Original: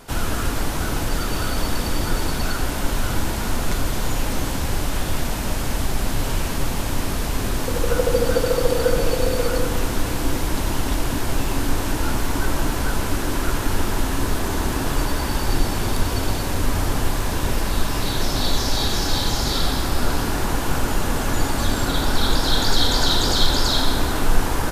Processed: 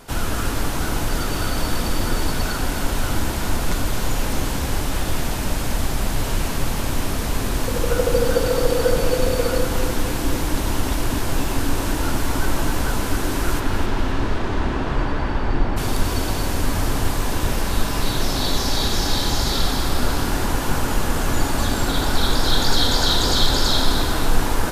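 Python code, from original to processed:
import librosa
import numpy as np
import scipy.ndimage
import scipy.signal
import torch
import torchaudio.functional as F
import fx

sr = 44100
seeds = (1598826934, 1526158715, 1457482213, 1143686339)

y = fx.lowpass(x, sr, hz=fx.line((13.59, 4500.0), (15.76, 2000.0)), slope=12, at=(13.59, 15.76), fade=0.02)
y = fx.echo_feedback(y, sr, ms=263, feedback_pct=38, wet_db=-9.0)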